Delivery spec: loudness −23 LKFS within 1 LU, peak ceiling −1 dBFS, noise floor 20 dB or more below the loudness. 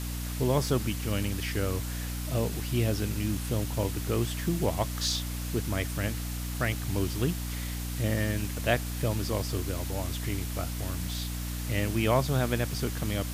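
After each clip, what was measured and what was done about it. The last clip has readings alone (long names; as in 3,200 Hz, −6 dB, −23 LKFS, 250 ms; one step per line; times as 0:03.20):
mains hum 60 Hz; hum harmonics up to 300 Hz; level of the hum −32 dBFS; background noise floor −34 dBFS; target noise floor −51 dBFS; integrated loudness −30.5 LKFS; sample peak −11.5 dBFS; target loudness −23.0 LKFS
→ hum removal 60 Hz, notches 5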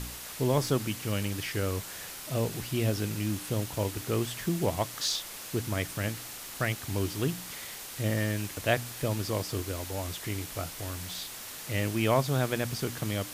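mains hum none found; background noise floor −42 dBFS; target noise floor −52 dBFS
→ broadband denoise 10 dB, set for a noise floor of −42 dBFS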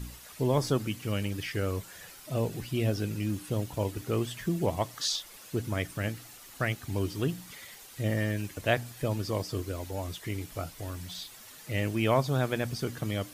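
background noise floor −50 dBFS; target noise floor −52 dBFS
→ broadband denoise 6 dB, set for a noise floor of −50 dBFS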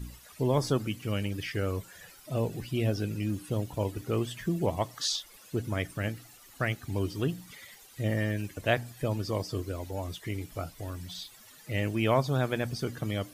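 background noise floor −54 dBFS; integrated loudness −32.0 LKFS; sample peak −12.0 dBFS; target loudness −23.0 LKFS
→ level +9 dB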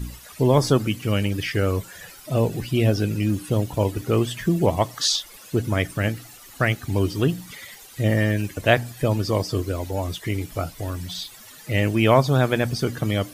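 integrated loudness −23.0 LKFS; sample peak −3.0 dBFS; background noise floor −45 dBFS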